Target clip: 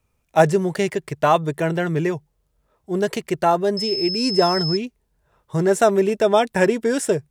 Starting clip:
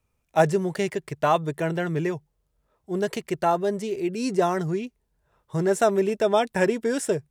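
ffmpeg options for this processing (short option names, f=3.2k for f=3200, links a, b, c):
-filter_complex "[0:a]asettb=1/sr,asplit=3[a][b][c];[a]atrim=end=3.774[d];[b]atrim=start=3.77:end=4.77,asetpts=PTS-STARTPTS,afade=t=in:d=0.004:c=qsin,afade=t=out:st=0.996:d=0.004:c=qsin,aeval=exprs='val(0)+0.0398*sin(2*PI*5200*n/s)':c=same[e];[c]atrim=start=4.766[f];[d][e]acrossfade=d=0.004:c1=hsin:c2=qsin[g];[g][f]acrossfade=d=0.004:c1=qsin:c2=hsin,volume=4.5dB"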